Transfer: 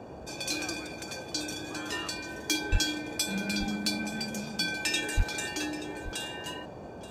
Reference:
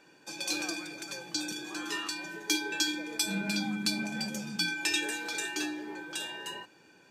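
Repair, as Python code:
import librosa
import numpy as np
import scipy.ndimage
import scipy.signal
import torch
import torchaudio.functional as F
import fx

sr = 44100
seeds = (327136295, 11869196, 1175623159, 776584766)

y = fx.fix_declip(x, sr, threshold_db=-17.0)
y = fx.highpass(y, sr, hz=140.0, slope=24, at=(2.71, 2.83), fade=0.02)
y = fx.highpass(y, sr, hz=140.0, slope=24, at=(5.16, 5.28), fade=0.02)
y = fx.noise_reduce(y, sr, print_start_s=6.59, print_end_s=7.09, reduce_db=8.0)
y = fx.fix_echo_inverse(y, sr, delay_ms=879, level_db=-16.0)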